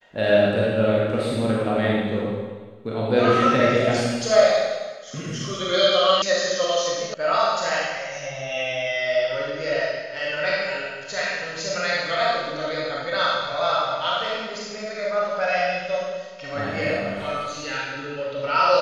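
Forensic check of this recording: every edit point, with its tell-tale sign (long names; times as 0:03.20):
0:06.22: cut off before it has died away
0:07.14: cut off before it has died away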